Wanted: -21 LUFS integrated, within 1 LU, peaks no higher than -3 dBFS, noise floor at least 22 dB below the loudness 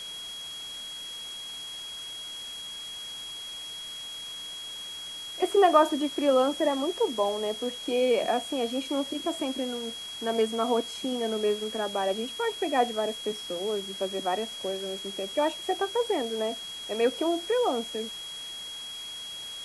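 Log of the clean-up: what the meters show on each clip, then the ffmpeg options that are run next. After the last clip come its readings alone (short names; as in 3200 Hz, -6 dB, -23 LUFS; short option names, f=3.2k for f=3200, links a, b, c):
steady tone 3300 Hz; tone level -37 dBFS; noise floor -39 dBFS; noise floor target -52 dBFS; loudness -29.5 LUFS; peak -8.0 dBFS; loudness target -21.0 LUFS
-> -af "bandreject=f=3.3k:w=30"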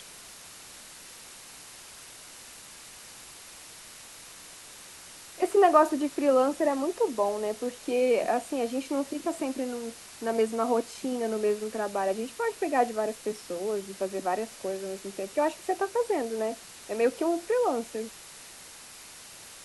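steady tone none; noise floor -48 dBFS; noise floor target -51 dBFS
-> -af "afftdn=nr=6:nf=-48"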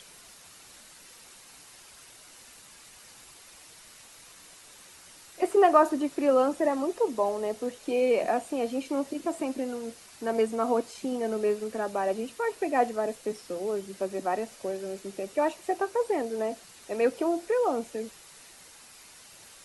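noise floor -52 dBFS; loudness -28.5 LUFS; peak -8.0 dBFS; loudness target -21.0 LUFS
-> -af "volume=7.5dB,alimiter=limit=-3dB:level=0:latency=1"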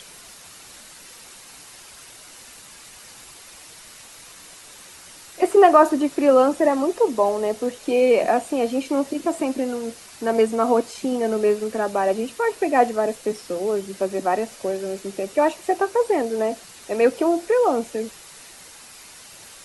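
loudness -21.0 LUFS; peak -3.0 dBFS; noise floor -44 dBFS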